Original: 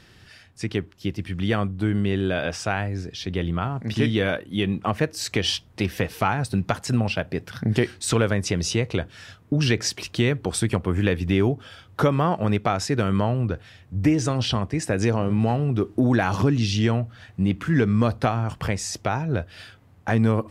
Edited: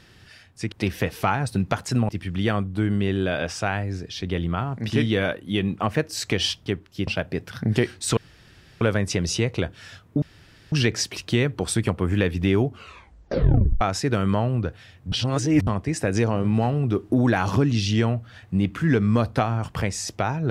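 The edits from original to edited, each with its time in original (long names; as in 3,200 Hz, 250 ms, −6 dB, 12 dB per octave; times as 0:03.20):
0:00.72–0:01.13: swap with 0:05.70–0:07.07
0:08.17: splice in room tone 0.64 s
0:09.58: splice in room tone 0.50 s
0:11.52: tape stop 1.15 s
0:13.98–0:14.53: reverse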